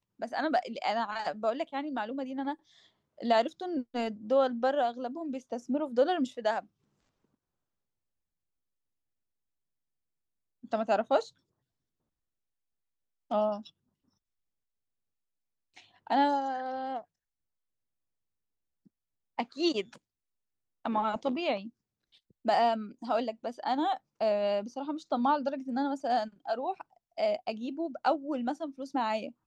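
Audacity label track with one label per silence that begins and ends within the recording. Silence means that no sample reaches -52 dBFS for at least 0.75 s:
6.650000	10.630000	silence
11.300000	13.300000	silence
13.700000	15.760000	silence
17.040000	18.870000	silence
19.980000	20.850000	silence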